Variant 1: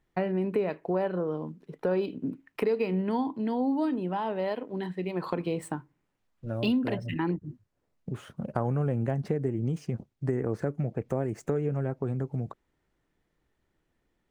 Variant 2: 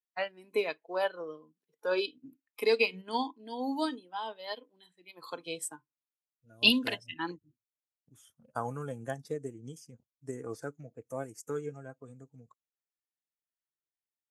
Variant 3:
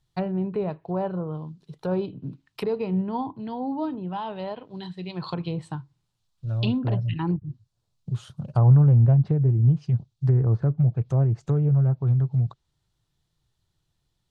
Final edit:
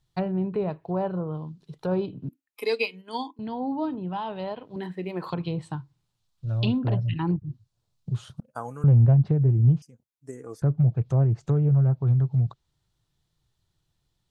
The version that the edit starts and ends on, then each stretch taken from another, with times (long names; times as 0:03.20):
3
0:02.29–0:03.39: punch in from 2
0:04.76–0:05.30: punch in from 1
0:08.40–0:08.84: punch in from 2
0:09.82–0:10.62: punch in from 2